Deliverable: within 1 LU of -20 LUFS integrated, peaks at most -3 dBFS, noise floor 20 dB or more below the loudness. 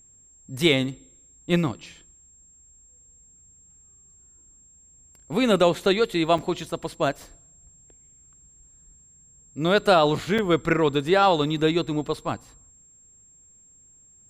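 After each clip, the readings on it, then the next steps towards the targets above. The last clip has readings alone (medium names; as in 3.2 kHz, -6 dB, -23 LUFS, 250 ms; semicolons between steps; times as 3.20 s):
dropouts 2; longest dropout 5.1 ms; steady tone 7.5 kHz; tone level -52 dBFS; loudness -23.0 LUFS; peak level -7.5 dBFS; loudness target -20.0 LUFS
-> interpolate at 6.38/10.38 s, 5.1 ms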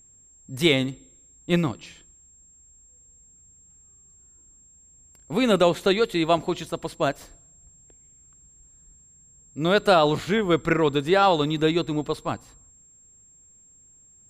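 dropouts 0; steady tone 7.5 kHz; tone level -52 dBFS
-> band-stop 7.5 kHz, Q 30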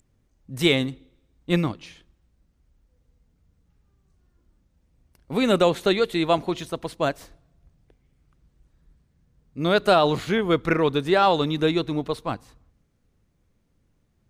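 steady tone not found; loudness -23.0 LUFS; peak level -7.5 dBFS; loudness target -20.0 LUFS
-> trim +3 dB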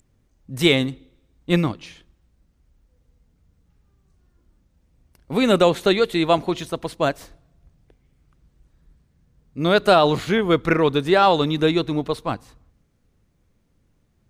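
loudness -20.0 LUFS; peak level -4.5 dBFS; noise floor -65 dBFS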